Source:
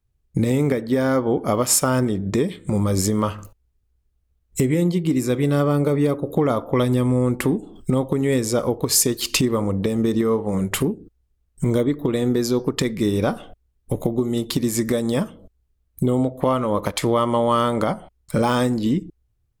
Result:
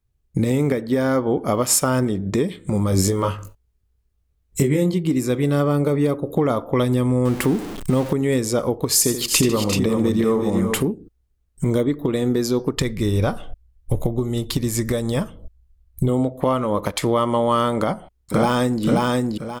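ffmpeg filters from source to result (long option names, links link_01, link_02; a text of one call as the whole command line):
ffmpeg -i in.wav -filter_complex "[0:a]asettb=1/sr,asplit=3[link_01][link_02][link_03];[link_01]atrim=end=2.904[link_04];[link_02]atrim=start=2.9:end=4.94,asetpts=PTS-STARTPTS,afade=type=in:duration=0.004:curve=qsin,afade=type=out:start_time=2.036:duration=0.004:curve=qsin,asplit=2[link_05][link_06];[link_06]adelay=21,volume=-4dB[link_07];[link_05][link_07]amix=inputs=2:normalize=0,atrim=end_sample=89964[link_08];[link_03]atrim=start=4.936[link_09];[link_04][link_08]acrossfade=duration=0.004:curve1=hsin:curve2=qsin[link_10];[link_10][link_09]acrossfade=duration=0.004:curve1=qsin:curve2=hsin,asettb=1/sr,asplit=3[link_11][link_12][link_13];[link_11]atrim=end=7.254[link_14];[link_12]atrim=start=7.25:end=8.13,asetpts=PTS-STARTPTS,afade=type=in:duration=0.004:curve=qsin,afade=type=out:start_time=0.876:duration=0.004:curve=qsin,aeval=exprs='val(0)+0.5*0.0422*sgn(val(0))':channel_layout=same[link_15];[link_13]atrim=start=8.126[link_16];[link_14][link_15]acrossfade=duration=0.004:curve1=hsin:curve2=qsin[link_17];[link_17][link_16]acrossfade=duration=0.004:curve1=qsin:curve2=hsin,asettb=1/sr,asplit=3[link_18][link_19][link_20];[link_18]atrim=end=8.934[link_21];[link_19]atrim=start=8.93:end=10.81,asetpts=PTS-STARTPTS,afade=type=in:duration=0.004:curve=qsin,afade=type=out:start_time=1.876:duration=0.004:curve=qsin,aecho=1:1:83|149|350|382:0.316|0.158|0.282|0.531,atrim=end_sample=82908[link_22];[link_20]atrim=start=10.806[link_23];[link_21][link_22]acrossfade=duration=0.004:curve1=hsin:curve2=qsin[link_24];[link_24][link_23]acrossfade=duration=0.004:curve1=qsin:curve2=hsin,asplit=3[link_25][link_26][link_27];[link_25]afade=type=out:start_time=12.76:duration=0.02[link_28];[link_26]asubboost=boost=4.5:cutoff=97,afade=type=in:start_time=12.76:duration=0.02,afade=type=out:start_time=16.08:duration=0.02[link_29];[link_27]afade=type=in:start_time=16.08:duration=0.02[link_30];[link_28][link_29][link_30]amix=inputs=3:normalize=0,asplit=2[link_31][link_32];[link_32]afade=type=in:start_time=17.78:duration=0.01,afade=type=out:start_time=18.84:duration=0.01,aecho=0:1:530|1060|1590|2120:0.891251|0.267375|0.0802126|0.0240638[link_33];[link_31][link_33]amix=inputs=2:normalize=0" out.wav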